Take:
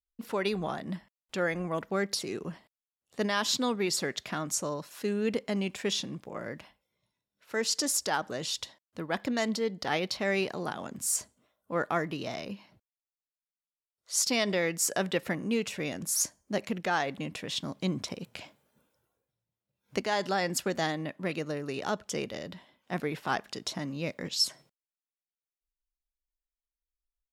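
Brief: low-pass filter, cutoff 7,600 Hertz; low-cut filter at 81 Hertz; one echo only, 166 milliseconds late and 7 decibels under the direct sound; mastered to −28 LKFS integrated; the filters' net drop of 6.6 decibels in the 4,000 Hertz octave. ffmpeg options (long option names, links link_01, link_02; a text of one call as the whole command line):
ffmpeg -i in.wav -af "highpass=81,lowpass=7600,equalizer=frequency=4000:width_type=o:gain=-8.5,aecho=1:1:166:0.447,volume=4.5dB" out.wav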